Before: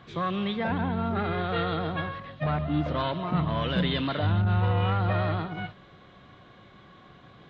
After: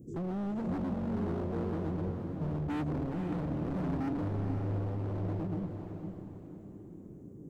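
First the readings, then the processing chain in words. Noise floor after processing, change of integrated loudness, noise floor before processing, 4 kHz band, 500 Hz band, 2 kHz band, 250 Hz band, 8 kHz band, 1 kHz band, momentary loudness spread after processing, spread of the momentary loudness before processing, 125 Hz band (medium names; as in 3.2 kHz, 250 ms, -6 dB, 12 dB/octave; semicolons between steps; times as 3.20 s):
-49 dBFS, -7.5 dB, -53 dBFS, under -20 dB, -7.5 dB, -17.0 dB, -3.5 dB, no reading, -13.5 dB, 14 LU, 8 LU, -7.5 dB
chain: inverse Chebyshev band-stop 850–4200 Hz, stop band 50 dB; bass shelf 260 Hz -8.5 dB; in parallel at +1 dB: compression, threshold -40 dBFS, peak gain reduction 12 dB; on the sum: small resonant body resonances 290/1300/3900 Hz, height 6 dB, ringing for 55 ms; hard clipper -35.5 dBFS, distortion -6 dB; echo that smears into a reverb 502 ms, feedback 41%, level -6 dB; trim +2.5 dB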